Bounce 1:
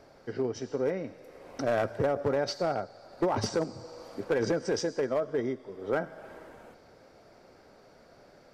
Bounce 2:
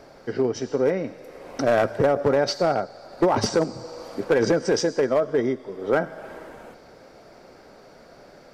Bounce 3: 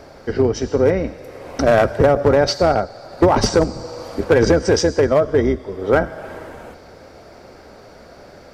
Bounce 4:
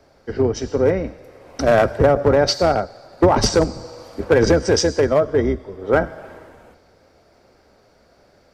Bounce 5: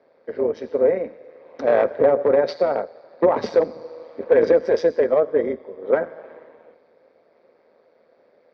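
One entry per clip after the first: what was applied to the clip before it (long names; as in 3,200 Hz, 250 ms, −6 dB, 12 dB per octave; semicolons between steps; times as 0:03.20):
parametric band 94 Hz −7 dB 0.44 octaves; level +8 dB
sub-octave generator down 2 octaves, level −4 dB; level +6 dB
multiband upward and downward expander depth 40%; level −1.5 dB
amplitude modulation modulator 160 Hz, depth 50%; loudspeaker in its box 300–3,300 Hz, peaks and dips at 330 Hz −3 dB, 500 Hz +7 dB, 780 Hz −5 dB, 1,400 Hz −7 dB, 2,900 Hz −10 dB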